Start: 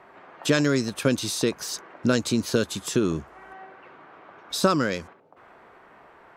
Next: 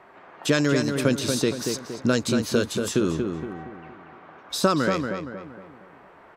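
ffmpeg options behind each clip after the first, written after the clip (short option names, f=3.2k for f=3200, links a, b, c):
-filter_complex "[0:a]asplit=2[a][b];[b]adelay=233,lowpass=f=2.3k:p=1,volume=-5dB,asplit=2[c][d];[d]adelay=233,lowpass=f=2.3k:p=1,volume=0.45,asplit=2[e][f];[f]adelay=233,lowpass=f=2.3k:p=1,volume=0.45,asplit=2[g][h];[h]adelay=233,lowpass=f=2.3k:p=1,volume=0.45,asplit=2[i][j];[j]adelay=233,lowpass=f=2.3k:p=1,volume=0.45,asplit=2[k][l];[l]adelay=233,lowpass=f=2.3k:p=1,volume=0.45[m];[a][c][e][g][i][k][m]amix=inputs=7:normalize=0"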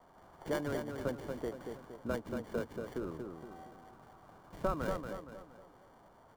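-filter_complex "[0:a]acrossover=split=590 2400:gain=0.2 1 0.141[a][b][c];[a][b][c]amix=inputs=3:normalize=0,acrossover=split=1200[d][e];[e]acrusher=samples=34:mix=1:aa=0.000001[f];[d][f]amix=inputs=2:normalize=0,volume=-6dB"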